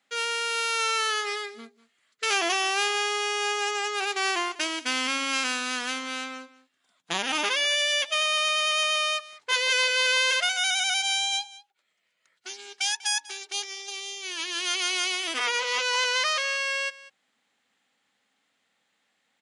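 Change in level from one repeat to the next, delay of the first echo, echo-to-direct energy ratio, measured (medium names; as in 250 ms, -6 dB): no regular repeats, 194 ms, -19.0 dB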